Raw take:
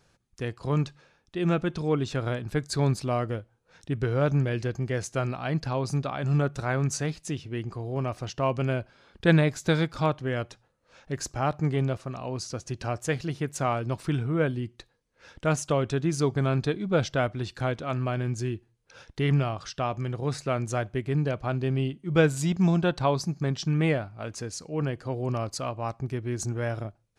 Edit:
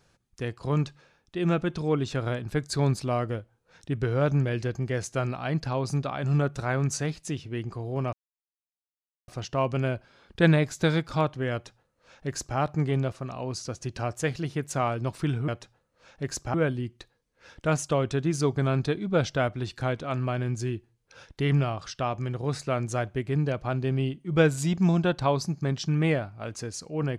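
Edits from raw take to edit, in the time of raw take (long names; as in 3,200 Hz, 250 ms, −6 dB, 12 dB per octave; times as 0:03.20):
0:08.13: splice in silence 1.15 s
0:10.37–0:11.43: duplicate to 0:14.33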